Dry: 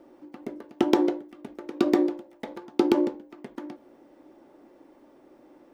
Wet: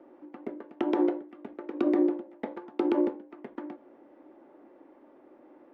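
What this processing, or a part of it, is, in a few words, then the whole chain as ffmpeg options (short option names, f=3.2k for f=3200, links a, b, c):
DJ mixer with the lows and highs turned down: -filter_complex "[0:a]asettb=1/sr,asplit=3[a][b][c];[a]atrim=end=1.734[d];[b]atrim=start=1.73:end=2.49,asetpts=PTS-STARTPTS,afade=t=in:d=0.004:c=qsin,afade=t=out:st=0.756:d=0.004:c=qsin,equalizer=f=240:w=0.73:g=5[e];[c]atrim=start=2.486[f];[d][e]acrossfade=d=0.004:c1=hsin:c2=qsin[g];[g][f]acrossfade=d=0.004:c1=qsin:c2=hsin,acrossover=split=200 2700:gain=0.251 1 0.0891[h][i][j];[h][i][j]amix=inputs=3:normalize=0,alimiter=limit=-15.5dB:level=0:latency=1:release=78"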